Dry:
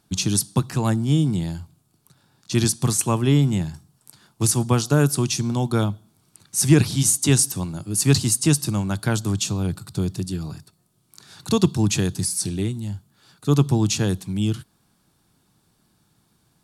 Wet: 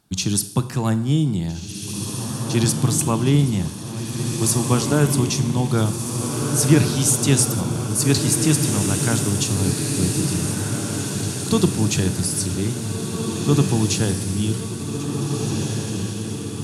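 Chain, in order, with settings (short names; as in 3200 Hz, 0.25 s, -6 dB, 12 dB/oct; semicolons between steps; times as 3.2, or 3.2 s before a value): diffused feedback echo 1.775 s, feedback 59%, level -4 dB; Schroeder reverb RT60 0.78 s, combs from 32 ms, DRR 12.5 dB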